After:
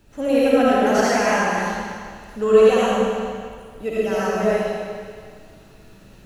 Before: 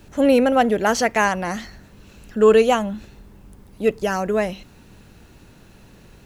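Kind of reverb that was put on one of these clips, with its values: algorithmic reverb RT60 2 s, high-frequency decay 0.95×, pre-delay 35 ms, DRR -9 dB; trim -9 dB

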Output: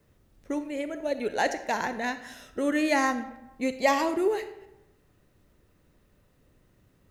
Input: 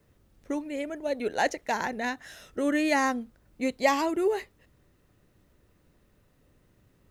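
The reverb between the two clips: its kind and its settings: algorithmic reverb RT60 0.92 s, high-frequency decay 0.65×, pre-delay 5 ms, DRR 10 dB

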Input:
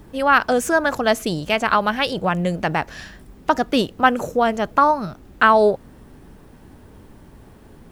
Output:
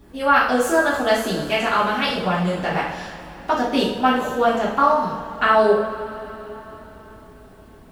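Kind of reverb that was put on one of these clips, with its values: two-slope reverb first 0.57 s, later 4.1 s, from -17 dB, DRR -7.5 dB; trim -8.5 dB

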